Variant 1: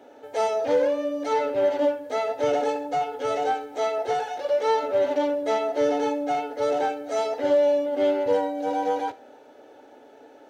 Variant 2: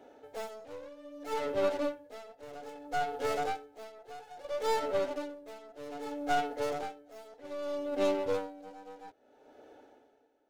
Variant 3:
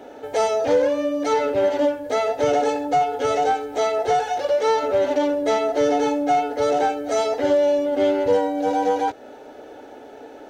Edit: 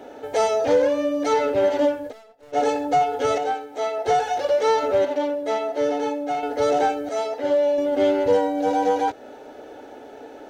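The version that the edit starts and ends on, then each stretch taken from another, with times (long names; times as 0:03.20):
3
0:02.10–0:02.55: punch in from 2, crossfade 0.06 s
0:03.38–0:04.06: punch in from 1
0:05.05–0:06.43: punch in from 1
0:07.09–0:07.78: punch in from 1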